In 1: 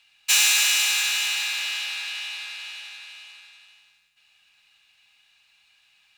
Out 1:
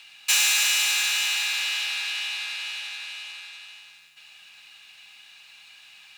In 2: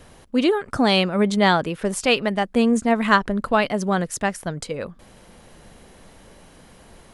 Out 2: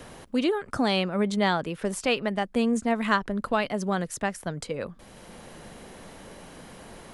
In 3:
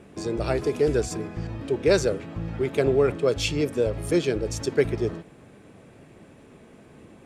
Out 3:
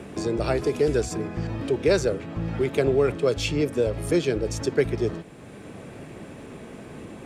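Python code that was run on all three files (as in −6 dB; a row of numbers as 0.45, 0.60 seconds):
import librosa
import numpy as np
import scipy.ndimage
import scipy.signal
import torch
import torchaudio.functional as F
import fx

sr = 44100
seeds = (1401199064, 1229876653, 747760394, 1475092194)

y = fx.band_squash(x, sr, depth_pct=40)
y = librosa.util.normalize(y) * 10.0 ** (-9 / 20.0)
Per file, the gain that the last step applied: +1.0, −6.0, +0.5 decibels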